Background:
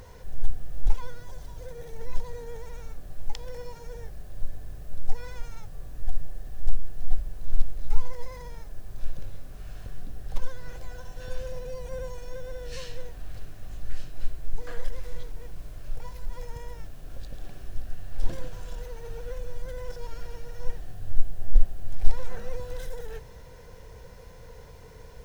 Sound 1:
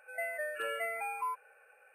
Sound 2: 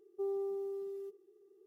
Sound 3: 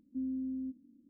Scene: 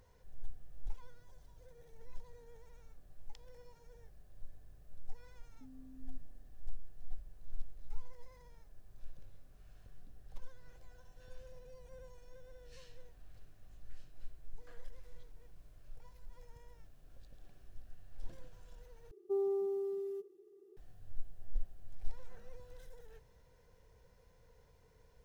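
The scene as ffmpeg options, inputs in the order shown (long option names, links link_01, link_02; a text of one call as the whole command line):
ffmpeg -i bed.wav -i cue0.wav -i cue1.wav -i cue2.wav -filter_complex "[0:a]volume=-18.5dB[link_01];[3:a]acompressor=threshold=-41dB:ratio=6:attack=3.2:release=140:knee=1:detection=peak[link_02];[2:a]lowshelf=frequency=400:gain=6[link_03];[link_01]asplit=2[link_04][link_05];[link_04]atrim=end=19.114[link_06];[link_03]atrim=end=1.66,asetpts=PTS-STARTPTS,volume=-0.5dB[link_07];[link_05]atrim=start=20.766[link_08];[link_02]atrim=end=1.09,asetpts=PTS-STARTPTS,volume=-13.5dB,afade=type=in:duration=0.004:curve=hsin,afade=type=out:start_time=1.086:duration=0.004:curve=hsin,adelay=5460[link_09];[link_06][link_07]acrossfade=duration=0.004:curve1=hsin:curve2=hsin[link_10];[link_10][link_08]acrossfade=duration=0.004:curve1=hsin:curve2=hsin[link_11];[link_11][link_09]amix=inputs=2:normalize=0" out.wav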